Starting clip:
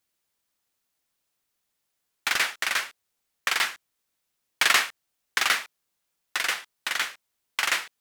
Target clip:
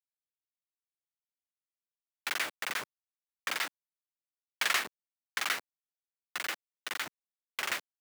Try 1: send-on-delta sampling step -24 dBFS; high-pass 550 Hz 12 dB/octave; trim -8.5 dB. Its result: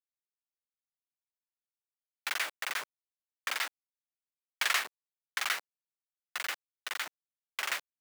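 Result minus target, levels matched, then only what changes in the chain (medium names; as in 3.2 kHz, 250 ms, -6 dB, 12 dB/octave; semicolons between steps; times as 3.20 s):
250 Hz band -9.0 dB
change: high-pass 260 Hz 12 dB/octave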